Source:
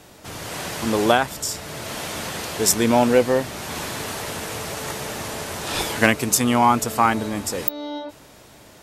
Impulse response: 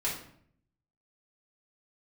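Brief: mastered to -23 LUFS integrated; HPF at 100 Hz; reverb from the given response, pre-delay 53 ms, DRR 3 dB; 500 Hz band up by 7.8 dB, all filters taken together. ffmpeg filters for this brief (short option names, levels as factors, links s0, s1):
-filter_complex "[0:a]highpass=100,equalizer=f=500:t=o:g=9,asplit=2[s0][s1];[1:a]atrim=start_sample=2205,adelay=53[s2];[s1][s2]afir=irnorm=-1:irlink=0,volume=0.355[s3];[s0][s3]amix=inputs=2:normalize=0,volume=0.473"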